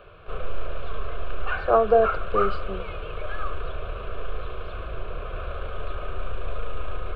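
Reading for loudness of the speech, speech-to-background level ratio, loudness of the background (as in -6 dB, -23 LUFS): -23.0 LUFS, 10.5 dB, -33.5 LUFS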